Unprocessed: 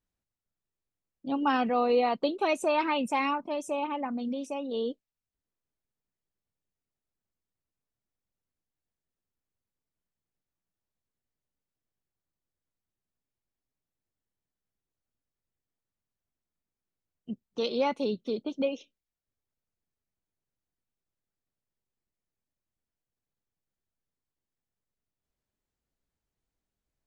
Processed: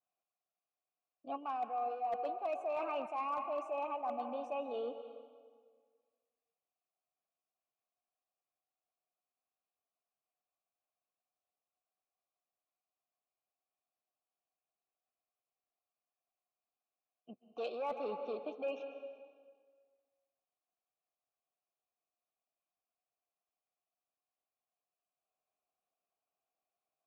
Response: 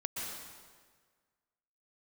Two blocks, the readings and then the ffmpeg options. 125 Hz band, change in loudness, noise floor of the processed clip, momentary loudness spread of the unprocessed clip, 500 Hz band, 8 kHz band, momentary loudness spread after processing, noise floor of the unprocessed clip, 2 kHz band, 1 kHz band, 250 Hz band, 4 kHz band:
below −15 dB, −10.0 dB, below −85 dBFS, 11 LU, −9.0 dB, can't be measured, 14 LU, below −85 dBFS, −15.5 dB, −7.5 dB, −18.5 dB, −18.0 dB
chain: -filter_complex "[0:a]highpass=63,asoftclip=type=tanh:threshold=-22dB,asplit=2[link_01][link_02];[link_02]bass=frequency=250:gain=-8,treble=frequency=4000:gain=-9[link_03];[1:a]atrim=start_sample=2205,asetrate=40572,aresample=44100[link_04];[link_03][link_04]afir=irnorm=-1:irlink=0,volume=-7.5dB[link_05];[link_01][link_05]amix=inputs=2:normalize=0,acontrast=53,adynamicequalizer=threshold=0.00708:dfrequency=3400:dqfactor=1.3:tfrequency=3400:tqfactor=1.3:attack=5:release=100:ratio=0.375:range=3:mode=cutabove:tftype=bell,asplit=3[link_06][link_07][link_08];[link_06]bandpass=frequency=730:width_type=q:width=8,volume=0dB[link_09];[link_07]bandpass=frequency=1090:width_type=q:width=8,volume=-6dB[link_10];[link_08]bandpass=frequency=2440:width_type=q:width=8,volume=-9dB[link_11];[link_09][link_10][link_11]amix=inputs=3:normalize=0,bandreject=frequency=3300:width=20,areverse,acompressor=threshold=-35dB:ratio=16,areverse,asoftclip=type=hard:threshold=-31dB,volume=1dB"

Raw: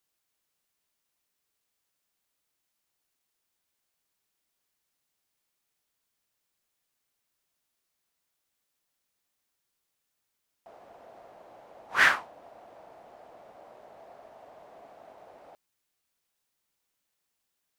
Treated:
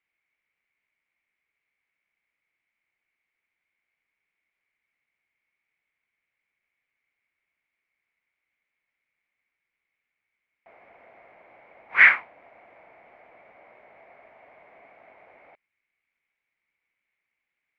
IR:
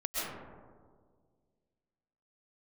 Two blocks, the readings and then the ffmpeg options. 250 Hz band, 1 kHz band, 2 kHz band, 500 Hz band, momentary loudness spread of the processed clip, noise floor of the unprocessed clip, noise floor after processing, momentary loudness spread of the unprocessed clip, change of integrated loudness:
can't be measured, −1.0 dB, +7.0 dB, −3.5 dB, 13 LU, −81 dBFS, −84 dBFS, 10 LU, +7.0 dB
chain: -af "lowpass=frequency=2200:width_type=q:width=11,volume=-4dB"

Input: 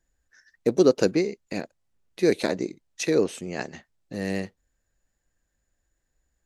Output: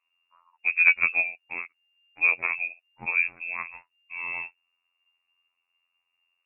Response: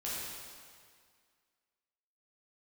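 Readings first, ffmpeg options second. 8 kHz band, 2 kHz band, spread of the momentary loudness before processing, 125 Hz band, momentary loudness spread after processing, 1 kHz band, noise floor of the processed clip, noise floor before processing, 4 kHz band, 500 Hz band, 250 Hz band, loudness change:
below −40 dB, +14.0 dB, 15 LU, below −20 dB, 18 LU, −0.5 dB, −80 dBFS, −78 dBFS, below −20 dB, −26.0 dB, −29.0 dB, +1.0 dB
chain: -af "afftfilt=real='hypot(re,im)*cos(PI*b)':imag='0':win_size=2048:overlap=0.75,aeval=exprs='0.596*(cos(1*acos(clip(val(0)/0.596,-1,1)))-cos(1*PI/2))+0.266*(cos(2*acos(clip(val(0)/0.596,-1,1)))-cos(2*PI/2))+0.075*(cos(4*acos(clip(val(0)/0.596,-1,1)))-cos(4*PI/2))+0.00422*(cos(5*acos(clip(val(0)/0.596,-1,1)))-cos(5*PI/2))':channel_layout=same,lowpass=frequency=2400:width_type=q:width=0.5098,lowpass=frequency=2400:width_type=q:width=0.6013,lowpass=frequency=2400:width_type=q:width=0.9,lowpass=frequency=2400:width_type=q:width=2.563,afreqshift=-2800,volume=1dB"

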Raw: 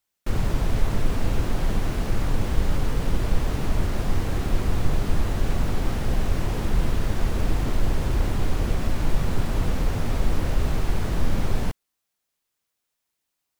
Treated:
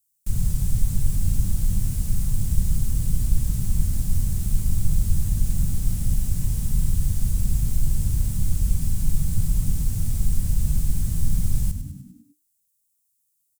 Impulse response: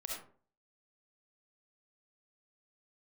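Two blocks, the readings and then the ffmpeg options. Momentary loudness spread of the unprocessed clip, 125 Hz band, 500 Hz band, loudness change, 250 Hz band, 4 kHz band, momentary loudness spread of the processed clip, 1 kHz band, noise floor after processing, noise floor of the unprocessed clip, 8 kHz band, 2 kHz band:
1 LU, +2.5 dB, −20.0 dB, +1.5 dB, −3.5 dB, −6.5 dB, 2 LU, below −15 dB, −72 dBFS, −81 dBFS, +8.0 dB, −15.5 dB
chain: -filter_complex "[0:a]firequalizer=gain_entry='entry(170,0);entry(300,-21);entry(860,-22);entry(8100,9)':delay=0.05:min_phase=1,asplit=7[link_01][link_02][link_03][link_04][link_05][link_06][link_07];[link_02]adelay=100,afreqshift=-50,volume=-10dB[link_08];[link_03]adelay=200,afreqshift=-100,volume=-15.5dB[link_09];[link_04]adelay=300,afreqshift=-150,volume=-21dB[link_10];[link_05]adelay=400,afreqshift=-200,volume=-26.5dB[link_11];[link_06]adelay=500,afreqshift=-250,volume=-32.1dB[link_12];[link_07]adelay=600,afreqshift=-300,volume=-37.6dB[link_13];[link_01][link_08][link_09][link_10][link_11][link_12][link_13]amix=inputs=7:normalize=0,volume=1dB"

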